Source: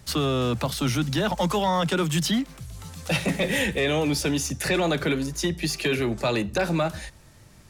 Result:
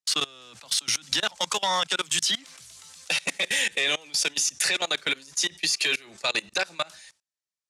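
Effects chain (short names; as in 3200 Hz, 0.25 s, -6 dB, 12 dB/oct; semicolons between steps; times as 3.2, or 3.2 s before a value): gate -44 dBFS, range -24 dB; weighting filter ITU-R 468; level quantiser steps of 24 dB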